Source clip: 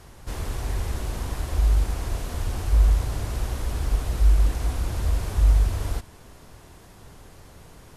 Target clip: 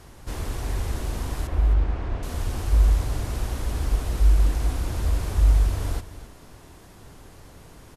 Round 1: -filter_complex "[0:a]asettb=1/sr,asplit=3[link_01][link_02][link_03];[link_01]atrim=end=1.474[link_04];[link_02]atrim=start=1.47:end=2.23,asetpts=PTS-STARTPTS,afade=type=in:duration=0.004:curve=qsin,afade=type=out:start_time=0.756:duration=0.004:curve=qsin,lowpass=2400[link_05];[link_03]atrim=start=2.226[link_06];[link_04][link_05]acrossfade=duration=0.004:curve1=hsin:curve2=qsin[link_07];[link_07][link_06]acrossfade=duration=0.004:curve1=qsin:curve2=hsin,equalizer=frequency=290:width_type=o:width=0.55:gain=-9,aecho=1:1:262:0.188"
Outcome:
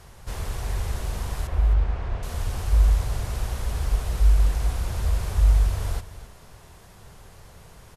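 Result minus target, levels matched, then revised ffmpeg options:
250 Hz band −5.5 dB
-filter_complex "[0:a]asettb=1/sr,asplit=3[link_01][link_02][link_03];[link_01]atrim=end=1.474[link_04];[link_02]atrim=start=1.47:end=2.23,asetpts=PTS-STARTPTS,afade=type=in:duration=0.004:curve=qsin,afade=type=out:start_time=0.756:duration=0.004:curve=qsin,lowpass=2400[link_05];[link_03]atrim=start=2.226[link_06];[link_04][link_05]acrossfade=duration=0.004:curve1=hsin:curve2=qsin[link_07];[link_07][link_06]acrossfade=duration=0.004:curve1=qsin:curve2=hsin,equalizer=frequency=290:width_type=o:width=0.55:gain=3,aecho=1:1:262:0.188"

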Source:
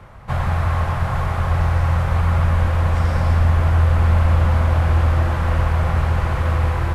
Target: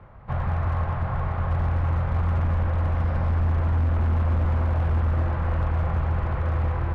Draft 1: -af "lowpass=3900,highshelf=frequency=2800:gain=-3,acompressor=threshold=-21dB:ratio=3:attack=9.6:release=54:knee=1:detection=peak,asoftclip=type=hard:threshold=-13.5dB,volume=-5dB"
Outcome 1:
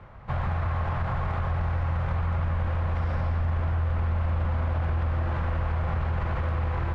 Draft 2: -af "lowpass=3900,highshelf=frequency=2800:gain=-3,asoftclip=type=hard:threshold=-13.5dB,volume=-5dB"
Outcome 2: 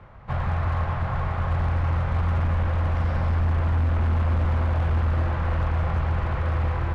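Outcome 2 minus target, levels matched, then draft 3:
4,000 Hz band +5.0 dB
-af "lowpass=3900,highshelf=frequency=2800:gain=-14,asoftclip=type=hard:threshold=-13.5dB,volume=-5dB"

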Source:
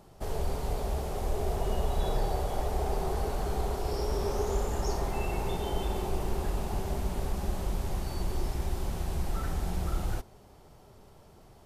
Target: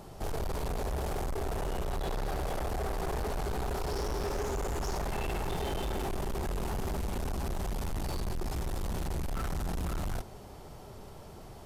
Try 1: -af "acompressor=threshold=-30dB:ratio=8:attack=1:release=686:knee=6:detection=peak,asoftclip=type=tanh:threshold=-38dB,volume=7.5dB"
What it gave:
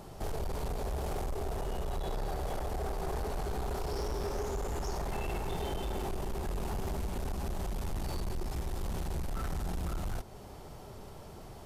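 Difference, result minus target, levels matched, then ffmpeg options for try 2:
downward compressor: peak gain reduction +7 dB
-af "acompressor=threshold=-21.5dB:ratio=8:attack=1:release=686:knee=6:detection=peak,asoftclip=type=tanh:threshold=-38dB,volume=7.5dB"

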